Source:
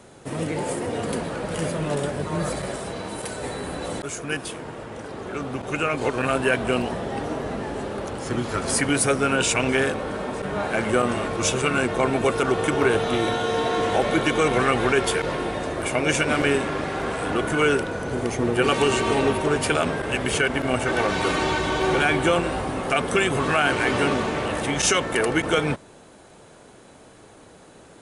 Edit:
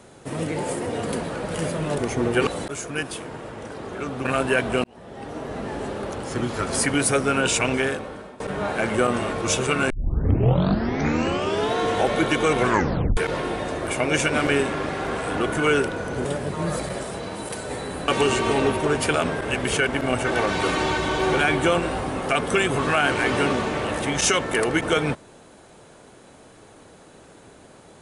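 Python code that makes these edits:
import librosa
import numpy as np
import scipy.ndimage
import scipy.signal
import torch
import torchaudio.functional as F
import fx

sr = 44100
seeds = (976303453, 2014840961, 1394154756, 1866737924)

y = fx.edit(x, sr, fx.swap(start_s=1.98, length_s=1.83, other_s=18.2, other_length_s=0.49),
    fx.cut(start_s=5.59, length_s=0.61),
    fx.fade_in_span(start_s=6.79, length_s=0.92),
    fx.fade_out_to(start_s=9.61, length_s=0.74, floor_db=-18.5),
    fx.tape_start(start_s=11.85, length_s=1.85),
    fx.tape_stop(start_s=14.6, length_s=0.52), tone=tone)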